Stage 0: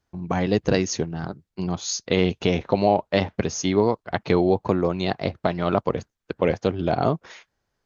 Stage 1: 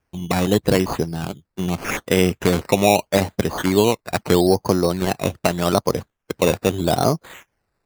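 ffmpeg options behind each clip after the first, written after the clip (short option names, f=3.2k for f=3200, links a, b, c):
-af "acrusher=samples=11:mix=1:aa=0.000001:lfo=1:lforange=6.6:lforate=0.8,volume=3.5dB"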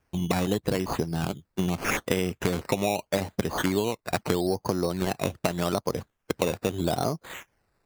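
-af "acompressor=threshold=-24dB:ratio=6,volume=1.5dB"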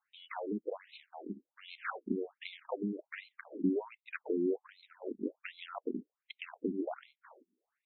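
-af "asubboost=boost=6:cutoff=230,afftfilt=real='re*between(b*sr/1024,280*pow(3000/280,0.5+0.5*sin(2*PI*1.3*pts/sr))/1.41,280*pow(3000/280,0.5+0.5*sin(2*PI*1.3*pts/sr))*1.41)':imag='im*between(b*sr/1024,280*pow(3000/280,0.5+0.5*sin(2*PI*1.3*pts/sr))/1.41,280*pow(3000/280,0.5+0.5*sin(2*PI*1.3*pts/sr))*1.41)':win_size=1024:overlap=0.75,volume=-6dB"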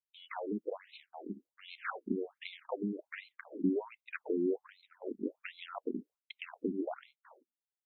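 -af "agate=range=-33dB:threshold=-55dB:ratio=3:detection=peak"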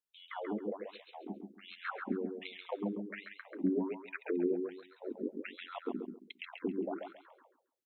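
-af "aecho=1:1:136|272|408:0.562|0.135|0.0324,volume=-1dB"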